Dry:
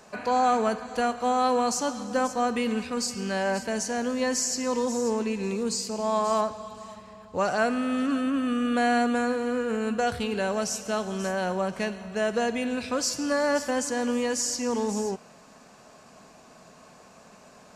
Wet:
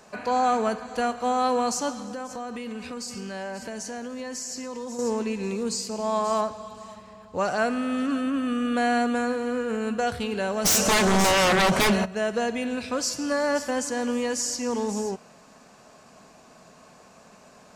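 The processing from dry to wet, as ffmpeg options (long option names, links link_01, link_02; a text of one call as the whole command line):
ffmpeg -i in.wav -filter_complex "[0:a]asettb=1/sr,asplit=3[link_01][link_02][link_03];[link_01]atrim=end=1.924[link_04];[link_02]atrim=start=1.92:end=4.99,asetpts=PTS-STARTPTS,afade=type=in:duration=0.004:curve=qsin,afade=type=out:start_time=3.066:duration=0.004:curve=qsin,acompressor=threshold=-31dB:ratio=6:attack=3.2:release=140:knee=1:detection=peak[link_05];[link_03]atrim=start=4.986[link_06];[link_04][link_05]acrossfade=duration=0.004:curve1=hsin:curve2=qsin[link_07];[link_07][link_06]acrossfade=duration=0.004:curve1=qsin:curve2=hsin,asplit=3[link_08][link_09][link_10];[link_08]afade=type=out:start_time=10.64:duration=0.02[link_11];[link_09]aeval=exprs='0.15*sin(PI/2*5.01*val(0)/0.15)':channel_layout=same,afade=type=in:start_time=10.64:duration=0.02,afade=type=out:start_time=12.04:duration=0.02[link_12];[link_10]afade=type=in:start_time=12.04:duration=0.02[link_13];[link_11][link_12][link_13]amix=inputs=3:normalize=0" out.wav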